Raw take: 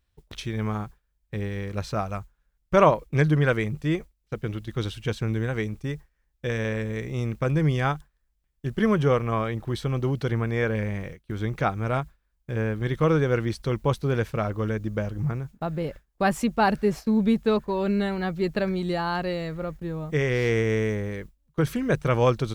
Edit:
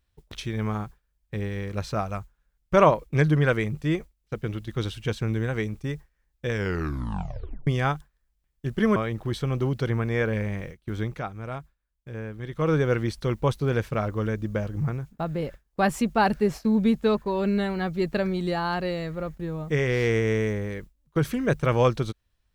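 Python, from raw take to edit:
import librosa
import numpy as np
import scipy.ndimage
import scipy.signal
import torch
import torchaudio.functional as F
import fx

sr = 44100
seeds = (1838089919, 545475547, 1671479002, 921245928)

y = fx.edit(x, sr, fx.tape_stop(start_s=6.51, length_s=1.16),
    fx.cut(start_s=8.96, length_s=0.42),
    fx.fade_down_up(start_s=11.42, length_s=1.76, db=-8.5, fade_s=0.22), tone=tone)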